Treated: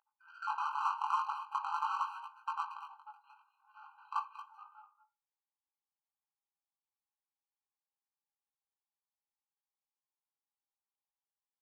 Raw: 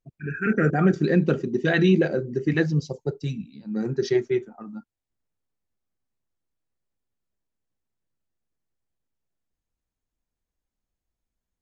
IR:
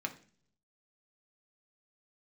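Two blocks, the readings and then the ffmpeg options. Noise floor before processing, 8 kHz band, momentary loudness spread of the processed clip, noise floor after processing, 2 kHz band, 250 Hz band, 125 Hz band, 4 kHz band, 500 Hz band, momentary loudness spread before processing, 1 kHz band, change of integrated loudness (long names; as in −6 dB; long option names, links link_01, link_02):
below −85 dBFS, can't be measured, 21 LU, below −85 dBFS, −19.0 dB, below −40 dB, below −40 dB, −15.5 dB, below −40 dB, 15 LU, +2.0 dB, −14.0 dB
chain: -filter_complex "[0:a]aresample=8000,aeval=exprs='(mod(4.73*val(0)+1,2)-1)/4.73':channel_layout=same,aresample=44100,acompressor=threshold=-23dB:ratio=6,highshelf=frequency=1500:width_type=q:width=3:gain=-11.5,asplit=2[link_01][link_02];[link_02]adelay=230,highpass=300,lowpass=3400,asoftclip=type=hard:threshold=-22.5dB,volume=-9dB[link_03];[link_01][link_03]amix=inputs=2:normalize=0,asubboost=boost=6.5:cutoff=210,bandreject=frequency=50:width_type=h:width=6,bandreject=frequency=100:width_type=h:width=6,bandreject=frequency=150:width_type=h:width=6,bandreject=frequency=200:width_type=h:width=6[link_04];[1:a]atrim=start_sample=2205,afade=type=out:start_time=0.23:duration=0.01,atrim=end_sample=10584[link_05];[link_04][link_05]afir=irnorm=-1:irlink=0,acrossover=split=2700[link_06][link_07];[link_06]adynamicsmooth=sensitivity=4:basefreq=1000[link_08];[link_08][link_07]amix=inputs=2:normalize=0,aeval=exprs='val(0)+0.0126*(sin(2*PI*50*n/s)+sin(2*PI*2*50*n/s)/2+sin(2*PI*3*50*n/s)/3+sin(2*PI*4*50*n/s)/4+sin(2*PI*5*50*n/s)/5)':channel_layout=same,flanger=delay=18:depth=3.9:speed=0.44,afftfilt=real='re*eq(mod(floor(b*sr/1024/790),2),1)':imag='im*eq(mod(floor(b*sr/1024/790),2),1)':win_size=1024:overlap=0.75,volume=-1.5dB"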